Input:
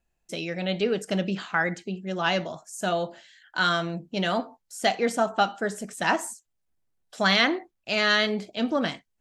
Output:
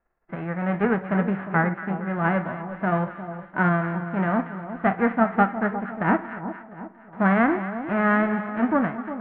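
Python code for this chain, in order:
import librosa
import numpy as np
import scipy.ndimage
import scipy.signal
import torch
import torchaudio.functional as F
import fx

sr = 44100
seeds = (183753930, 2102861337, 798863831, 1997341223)

y = fx.envelope_flatten(x, sr, power=0.3)
y = scipy.signal.sosfilt(scipy.signal.butter(6, 1800.0, 'lowpass', fs=sr, output='sos'), y)
y = fx.echo_split(y, sr, split_hz=1100.0, low_ms=356, high_ms=233, feedback_pct=52, wet_db=-11.0)
y = y * 10.0 ** (4.5 / 20.0)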